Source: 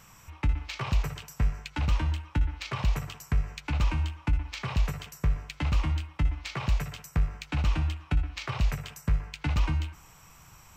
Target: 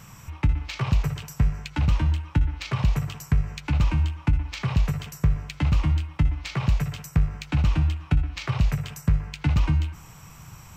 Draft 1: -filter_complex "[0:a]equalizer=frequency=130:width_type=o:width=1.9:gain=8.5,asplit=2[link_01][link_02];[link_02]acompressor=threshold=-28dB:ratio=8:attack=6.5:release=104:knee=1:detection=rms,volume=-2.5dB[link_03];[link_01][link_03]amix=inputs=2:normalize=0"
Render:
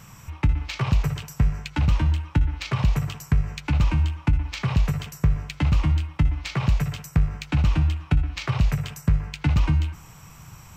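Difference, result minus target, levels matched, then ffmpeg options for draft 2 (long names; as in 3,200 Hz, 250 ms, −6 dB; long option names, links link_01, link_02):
downward compressor: peak gain reduction −8.5 dB
-filter_complex "[0:a]equalizer=frequency=130:width_type=o:width=1.9:gain=8.5,asplit=2[link_01][link_02];[link_02]acompressor=threshold=-38dB:ratio=8:attack=6.5:release=104:knee=1:detection=rms,volume=-2.5dB[link_03];[link_01][link_03]amix=inputs=2:normalize=0"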